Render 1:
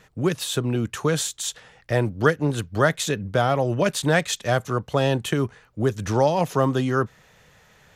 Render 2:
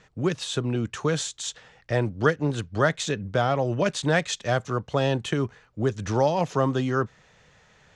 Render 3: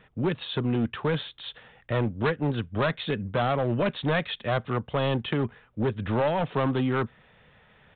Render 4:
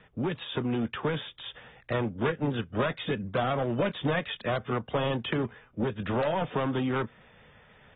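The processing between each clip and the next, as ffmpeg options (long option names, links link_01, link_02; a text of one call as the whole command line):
ffmpeg -i in.wav -af "lowpass=frequency=7600:width=0.5412,lowpass=frequency=7600:width=1.3066,volume=-2.5dB" out.wav
ffmpeg -i in.wav -af "equalizer=frequency=230:width_type=o:width=0.21:gain=6,aresample=8000,volume=20dB,asoftclip=hard,volume=-20dB,aresample=44100" out.wav
ffmpeg -i in.wav -filter_complex "[0:a]acrossover=split=140|3300[link_01][link_02][link_03];[link_01]acompressor=threshold=-43dB:ratio=4[link_04];[link_02]acompressor=threshold=-26dB:ratio=4[link_05];[link_03]acompressor=threshold=-46dB:ratio=4[link_06];[link_04][link_05][link_06]amix=inputs=3:normalize=0" -ar 32000 -c:a aac -b:a 16k out.aac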